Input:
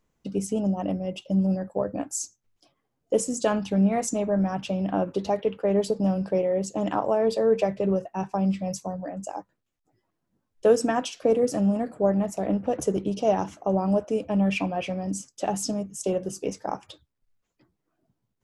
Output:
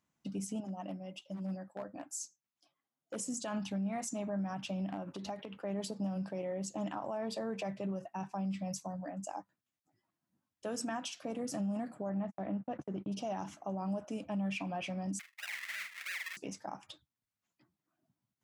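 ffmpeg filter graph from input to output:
ffmpeg -i in.wav -filter_complex "[0:a]asettb=1/sr,asplit=3[link_01][link_02][link_03];[link_01]atrim=end=0.604[link_04];[link_02]atrim=start=0.6:end=3.16,asetpts=PTS-STARTPTS,afade=type=in:duration=0.004:curve=qsin,afade=type=out:start_time=2.556:duration=0.004:curve=qsin,volume=17.5dB,asoftclip=hard,volume=-17.5dB,lowshelf=frequency=160:gain=-11,flanger=delay=1.8:depth=4.6:regen=-55:speed=1.4:shape=triangular[link_05];[link_03]atrim=start=3.156[link_06];[link_04][link_05]acrossfade=duration=0.004:curve1=hsin:curve2=qsin[link_07];[link_07][link_06]acrossfade=duration=0.004:curve1=qsin:curve2=hsin,asettb=1/sr,asplit=3[link_08][link_09][link_10];[link_08]atrim=end=4.874[link_11];[link_09]atrim=start=4.87:end=5.54,asetpts=PTS-STARTPTS,afade=type=in:duration=0.004:curve=qsin,afade=type=out:start_time=0.666:duration=0.004:curve=qsin,acompressor=threshold=-27dB:ratio=10:attack=3.2:release=140:knee=1:detection=peak,asoftclip=type=hard:threshold=-23dB[link_12];[link_10]atrim=start=5.536[link_13];[link_11][link_12]acrossfade=duration=0.004:curve1=hsin:curve2=qsin[link_14];[link_14][link_13]acrossfade=duration=0.004:curve1=qsin:curve2=hsin,asettb=1/sr,asplit=3[link_15][link_16][link_17];[link_15]atrim=end=12.094[link_18];[link_16]atrim=start=12.09:end=13.12,asetpts=PTS-STARTPTS,afade=type=in:duration=0.004:curve=qsin,afade=type=out:start_time=1.026:duration=0.004:curve=qsin,lowpass=2600,agate=range=-42dB:threshold=-34dB:ratio=16:release=100:detection=peak[link_19];[link_17]atrim=start=13.116[link_20];[link_18][link_19]acrossfade=duration=0.004:curve1=hsin:curve2=qsin[link_21];[link_21][link_20]acrossfade=duration=0.004:curve1=qsin:curve2=hsin,asettb=1/sr,asplit=3[link_22][link_23][link_24];[link_22]atrim=end=15.194[link_25];[link_23]atrim=start=15.19:end=16.37,asetpts=PTS-STARTPTS,afade=type=in:duration=0.004:curve=qsin,afade=type=out:start_time=1.176:duration=0.004:curve=qsin,acrusher=samples=40:mix=1:aa=0.000001:lfo=1:lforange=40:lforate=3,highpass=frequency=2000:width_type=q:width=4.9,asplit=2[link_26][link_27];[link_27]adelay=45,volume=-8.5dB[link_28];[link_26][link_28]amix=inputs=2:normalize=0,atrim=end_sample=52038[link_29];[link_24]atrim=start=16.366[link_30];[link_25][link_29]acrossfade=duration=0.004:curve1=hsin:curve2=qsin[link_31];[link_31][link_30]acrossfade=duration=0.004:curve1=qsin:curve2=hsin,equalizer=frequency=450:width_type=o:width=0.56:gain=-13,alimiter=level_in=0.5dB:limit=-24dB:level=0:latency=1:release=72,volume=-0.5dB,highpass=130,volume=-5dB" out.wav

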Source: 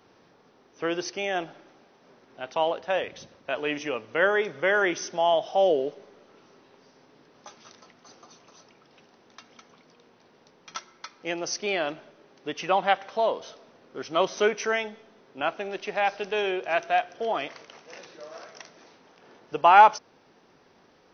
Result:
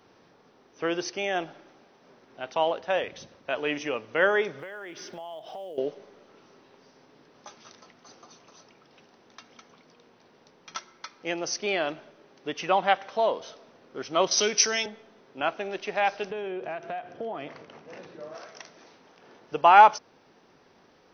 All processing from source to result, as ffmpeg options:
ffmpeg -i in.wav -filter_complex "[0:a]asettb=1/sr,asplit=3[link_01][link_02][link_03];[link_01]atrim=end=4.594[link_04];[link_02]atrim=start=4.59:end=5.78,asetpts=PTS-STARTPTS,afade=type=in:duration=0.004:curve=qsin,afade=type=out:start_time=1.186:duration=0.004:curve=qsin,lowpass=frequency=5000:width=0.5412,lowpass=frequency=5000:width=1.3066,acompressor=threshold=-37dB:ratio=8:attack=3.2:release=140:knee=1:detection=peak,acrusher=bits=8:mode=log:mix=0:aa=0.000001[link_05];[link_03]atrim=start=5.776[link_06];[link_04][link_05]acrossfade=duration=0.004:curve1=hsin:curve2=qsin[link_07];[link_07][link_06]acrossfade=duration=0.004:curve1=qsin:curve2=hsin,asettb=1/sr,asplit=3[link_08][link_09][link_10];[link_08]atrim=end=14.314[link_11];[link_09]atrim=start=14.31:end=14.86,asetpts=PTS-STARTPTS,afade=type=in:duration=0.004:curve=qsin,afade=type=out:start_time=0.546:duration=0.004:curve=qsin,acrossover=split=350|3000[link_12][link_13][link_14];[link_13]acompressor=threshold=-35dB:ratio=2:attack=3.2:release=140:knee=2.83:detection=peak[link_15];[link_12][link_15][link_14]amix=inputs=3:normalize=0,lowpass=frequency=5200:width_type=q:width=3.8,aemphasis=mode=production:type=75kf[link_16];[link_10]atrim=start=14.856[link_17];[link_11][link_16]acrossfade=duration=0.004:curve1=hsin:curve2=qsin[link_18];[link_18][link_17]acrossfade=duration=0.004:curve1=qsin:curve2=hsin,asettb=1/sr,asplit=3[link_19][link_20][link_21];[link_19]atrim=end=16.304[link_22];[link_20]atrim=start=16.3:end=18.35,asetpts=PTS-STARTPTS,afade=type=in:duration=0.004:curve=qsin,afade=type=out:start_time=2.046:duration=0.004:curve=qsin,aemphasis=mode=reproduction:type=riaa,acompressor=threshold=-30dB:ratio=12:attack=3.2:release=140:knee=1:detection=peak,highpass=120[link_23];[link_21]atrim=start=18.346[link_24];[link_22][link_23]acrossfade=duration=0.004:curve1=hsin:curve2=qsin[link_25];[link_25][link_24]acrossfade=duration=0.004:curve1=qsin:curve2=hsin" out.wav

